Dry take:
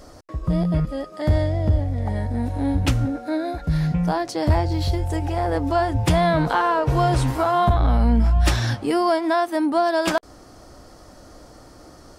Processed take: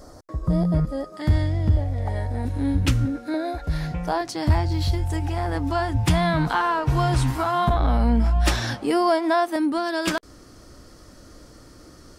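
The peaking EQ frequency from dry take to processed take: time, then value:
peaking EQ -10.5 dB 0.8 oct
2.7 kHz
from 1.17 s 600 Hz
from 1.77 s 200 Hz
from 2.45 s 710 Hz
from 3.34 s 180 Hz
from 4.21 s 520 Hz
from 7.69 s 98 Hz
from 9.56 s 760 Hz

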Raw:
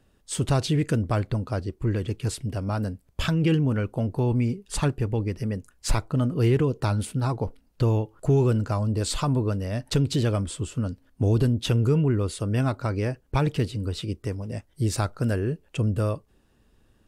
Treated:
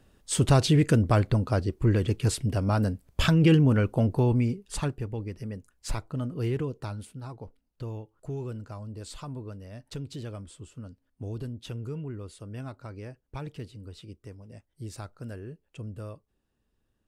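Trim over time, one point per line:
4.06 s +2.5 dB
5.10 s -8 dB
6.63 s -8 dB
7.16 s -14.5 dB

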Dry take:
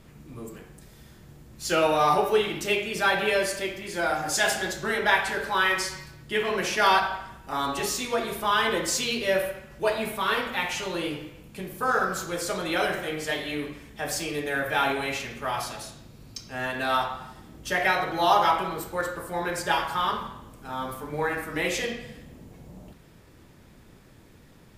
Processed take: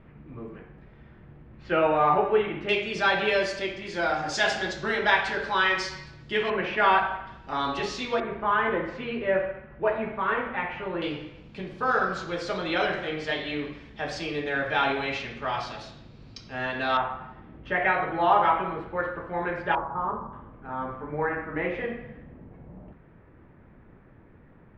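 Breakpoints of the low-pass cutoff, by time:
low-pass 24 dB/octave
2.4 kHz
from 2.69 s 5.4 kHz
from 6.50 s 2.8 kHz
from 7.27 s 4.6 kHz
from 8.20 s 2.1 kHz
from 11.02 s 4.6 kHz
from 16.97 s 2.5 kHz
from 19.75 s 1.1 kHz
from 20.33 s 2 kHz

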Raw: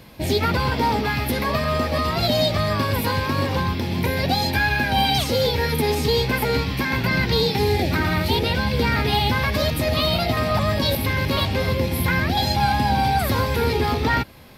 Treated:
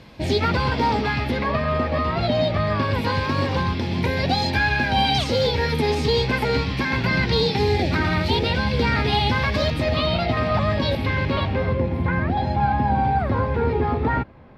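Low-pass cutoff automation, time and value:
1.02 s 5.6 kHz
1.56 s 2.6 kHz
2.61 s 2.6 kHz
3.24 s 5.6 kHz
9.53 s 5.6 kHz
10.07 s 3.3 kHz
11.15 s 3.3 kHz
11.85 s 1.4 kHz

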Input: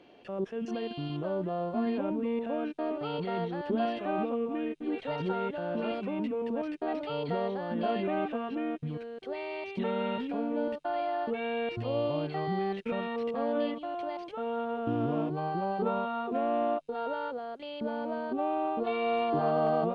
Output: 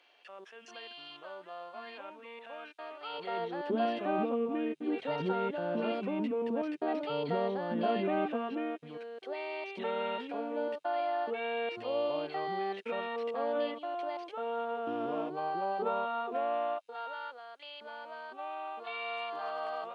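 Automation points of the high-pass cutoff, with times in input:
3.02 s 1.2 kHz
3.27 s 540 Hz
4.01 s 160 Hz
8.34 s 160 Hz
8.77 s 430 Hz
16.17 s 430 Hz
17.17 s 1.2 kHz

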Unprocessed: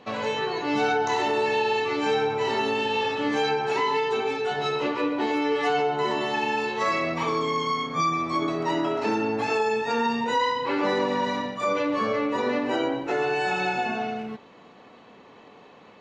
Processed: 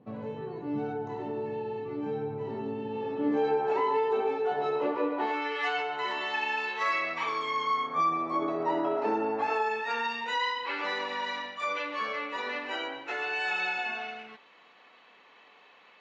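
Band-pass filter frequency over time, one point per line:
band-pass filter, Q 0.93
2.80 s 140 Hz
3.71 s 590 Hz
5.03 s 590 Hz
5.53 s 2 kHz
7.46 s 2 kHz
8.19 s 670 Hz
9.21 s 670 Hz
10.09 s 2.4 kHz

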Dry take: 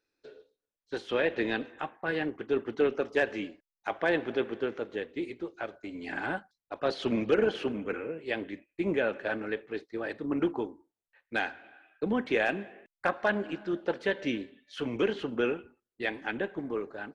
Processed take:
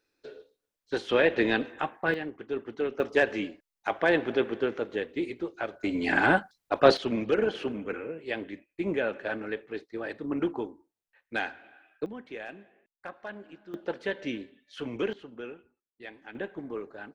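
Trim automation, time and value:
+5 dB
from 2.14 s -4 dB
from 3.00 s +3.5 dB
from 5.80 s +11 dB
from 6.97 s -0.5 dB
from 12.06 s -13 dB
from 13.74 s -2.5 dB
from 15.13 s -12 dB
from 16.35 s -3 dB

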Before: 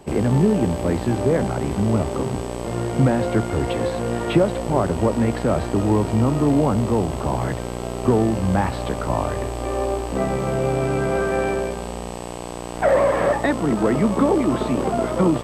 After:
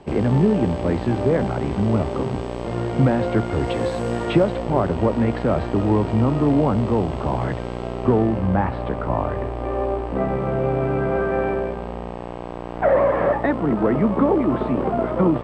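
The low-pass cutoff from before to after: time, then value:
3.45 s 4.2 kHz
3.96 s 8.2 kHz
4.67 s 3.6 kHz
7.74 s 3.6 kHz
8.53 s 2 kHz

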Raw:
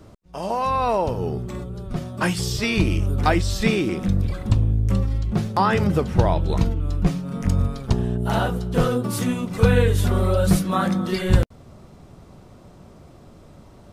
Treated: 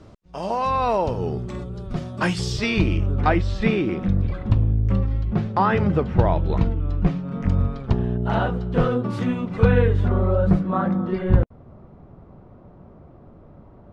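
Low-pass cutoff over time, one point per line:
2.49 s 6.2 kHz
3.10 s 2.6 kHz
9.59 s 2.6 kHz
10.25 s 1.3 kHz

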